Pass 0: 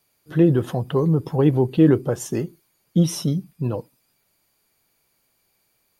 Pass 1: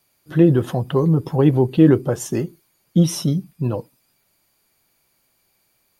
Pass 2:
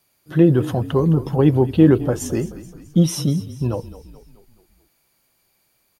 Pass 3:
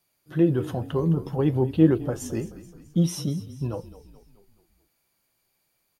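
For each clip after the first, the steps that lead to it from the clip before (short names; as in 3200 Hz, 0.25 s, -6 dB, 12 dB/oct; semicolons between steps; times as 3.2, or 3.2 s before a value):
notch 450 Hz, Q 15; gain +2.5 dB
frequency-shifting echo 0.214 s, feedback 54%, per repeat -34 Hz, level -16 dB
flange 0.52 Hz, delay 5.5 ms, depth 7.6 ms, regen +78%; gain -3 dB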